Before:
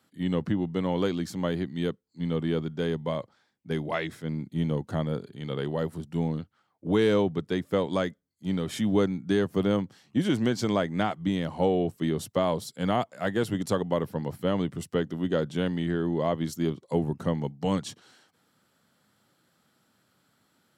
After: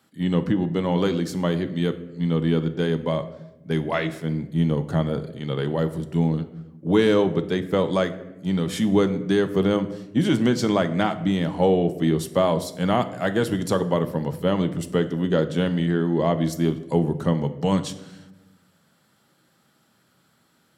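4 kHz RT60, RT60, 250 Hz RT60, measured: 0.60 s, 1.0 s, 1.5 s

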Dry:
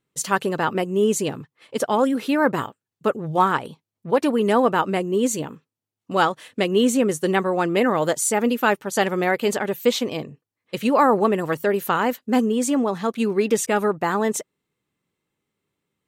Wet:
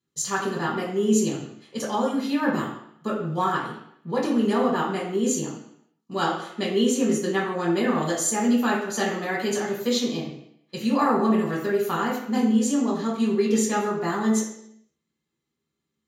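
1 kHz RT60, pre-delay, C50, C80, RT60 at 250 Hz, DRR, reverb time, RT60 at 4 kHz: 0.70 s, 3 ms, 4.0 dB, 7.0 dB, 0.75 s, −5.0 dB, 0.70 s, 0.70 s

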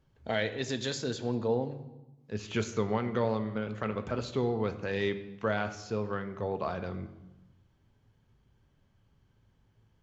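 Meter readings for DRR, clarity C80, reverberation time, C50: 8.0 dB, 14.5 dB, 1.0 s, 12.5 dB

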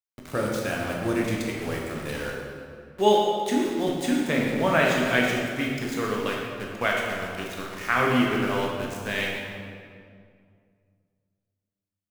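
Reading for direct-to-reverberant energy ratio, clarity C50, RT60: −2.5 dB, 0.0 dB, 2.2 s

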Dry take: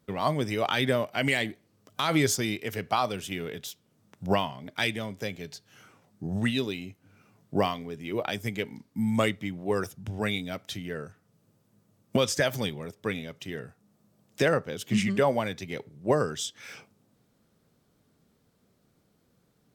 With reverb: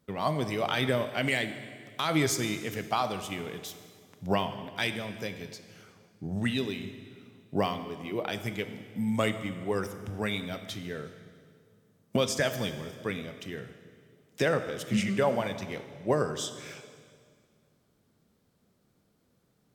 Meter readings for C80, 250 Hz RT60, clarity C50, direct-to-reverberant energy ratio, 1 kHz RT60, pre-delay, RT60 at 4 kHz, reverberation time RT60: 11.5 dB, 2.4 s, 10.5 dB, 9.5 dB, 1.9 s, 17 ms, 1.8 s, 2.0 s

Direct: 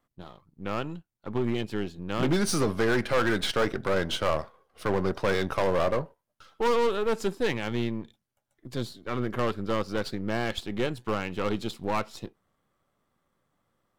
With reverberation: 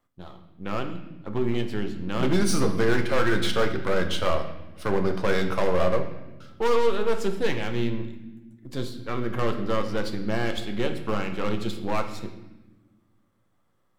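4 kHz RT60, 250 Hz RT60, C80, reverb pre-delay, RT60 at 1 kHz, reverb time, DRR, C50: 0.90 s, 2.1 s, 11.5 dB, 9 ms, 0.95 s, 1.2 s, 5.0 dB, 9.5 dB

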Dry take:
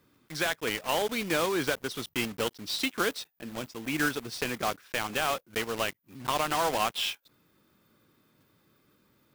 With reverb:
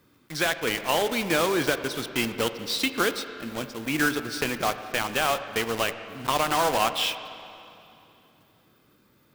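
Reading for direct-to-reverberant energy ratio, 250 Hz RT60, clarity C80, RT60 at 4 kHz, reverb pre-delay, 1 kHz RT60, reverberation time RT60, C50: 10.0 dB, 2.7 s, 11.0 dB, 2.6 s, 7 ms, 2.8 s, 2.8 s, 10.5 dB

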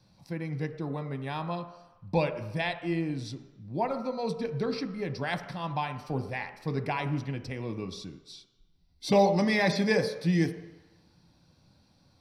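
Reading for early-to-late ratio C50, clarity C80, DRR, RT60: 10.5 dB, 12.0 dB, 6.5 dB, 1.0 s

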